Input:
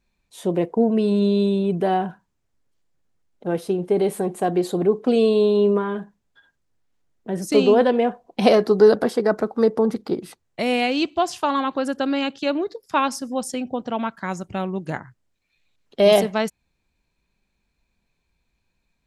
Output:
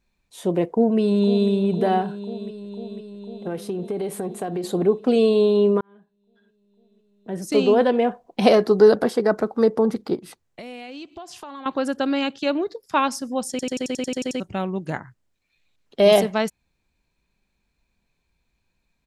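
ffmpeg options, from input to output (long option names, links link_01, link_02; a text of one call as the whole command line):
ffmpeg -i in.wav -filter_complex "[0:a]asplit=2[link_01][link_02];[link_02]afade=type=in:start_time=0.64:duration=0.01,afade=type=out:start_time=1.5:duration=0.01,aecho=0:1:500|1000|1500|2000|2500|3000|3500|4000|4500|5000|5500|6000:0.251189|0.188391|0.141294|0.10597|0.0794777|0.0596082|0.0447062|0.0335296|0.0251472|0.0188604|0.0141453|0.010609[link_03];[link_01][link_03]amix=inputs=2:normalize=0,asettb=1/sr,asplit=3[link_04][link_05][link_06];[link_04]atrim=end=2.024[link_07];[link_05]atrim=start=2.02:end=4.64,asetpts=PTS-STARTPTS,afade=type=in:duration=0.004:curve=qsin,afade=type=out:start_time=2.616:duration=0.004:curve=qsin,acompressor=threshold=-23dB:ratio=6:attack=3.2:release=140:knee=1:detection=peak[link_08];[link_06]atrim=start=4.636[link_09];[link_07][link_08]acrossfade=duration=0.004:curve1=hsin:curve2=qsin[link_10];[link_10][link_09]acrossfade=duration=0.004:curve1=qsin:curve2=hsin,asettb=1/sr,asplit=3[link_11][link_12][link_13];[link_11]atrim=end=10.164[link_14];[link_12]atrim=start=10.16:end=11.66,asetpts=PTS-STARTPTS,afade=type=in:duration=0.004:curve=qsin,afade=type=out:start_time=1.496:duration=0.004:curve=qsin,acompressor=threshold=-36dB:ratio=5:attack=3.2:release=140:knee=1:detection=peak[link_15];[link_13]atrim=start=11.656[link_16];[link_14][link_15]acrossfade=duration=0.004:curve1=hsin:curve2=qsin[link_17];[link_17][link_16]acrossfade=duration=0.004:curve1=qsin:curve2=hsin,asplit=12[link_18][link_19][link_20][link_21][link_22][link_23][link_24][link_25][link_26][link_27][link_28][link_29];[link_18]atrim=end=5.81,asetpts=PTS-STARTPTS,afade=type=out:start_time=5.806:duration=0.004:curve=hsin[link_30];[link_19]atrim=start=5.81:end=13.592,asetpts=PTS-STARTPTS,afade=type=in:duration=2.28[link_31];[link_20]atrim=start=13.498:end=13.592[link_32];[link_21]atrim=start=13.498:end=13.592[link_33];[link_22]atrim=start=13.498:end=13.592[link_34];[link_23]atrim=start=13.498:end=13.592[link_35];[link_24]atrim=start=13.498:end=13.592[link_36];[link_25]atrim=start=13.498:end=13.592[link_37];[link_26]atrim=start=13.498:end=13.592[link_38];[link_27]atrim=start=13.498:end=13.592[link_39];[link_28]atrim=start=13.498:end=13.592[link_40];[link_29]atrim=start=14.398[link_41];[link_30][link_31]concat=n=2:v=0:a=1[link_42];[link_42][link_32]acrossfade=duration=0.004:curve1=hsin:curve2=hsin[link_43];[link_43][link_33]acrossfade=duration=0.004:curve1=hsin:curve2=hsin[link_44];[link_44][link_34]acrossfade=duration=0.004:curve1=hsin:curve2=hsin[link_45];[link_45][link_35]acrossfade=duration=0.004:curve1=hsin:curve2=hsin[link_46];[link_46][link_36]acrossfade=duration=0.004:curve1=hsin:curve2=hsin[link_47];[link_47][link_37]acrossfade=duration=0.004:curve1=hsin:curve2=hsin[link_48];[link_48][link_38]acrossfade=duration=0.004:curve1=hsin:curve2=hsin[link_49];[link_49][link_39]acrossfade=duration=0.004:curve1=hsin:curve2=hsin[link_50];[link_50][link_40]acrossfade=duration=0.004:curve1=hsin:curve2=hsin[link_51];[link_51][link_41]acrossfade=duration=0.004:curve1=hsin:curve2=hsin" out.wav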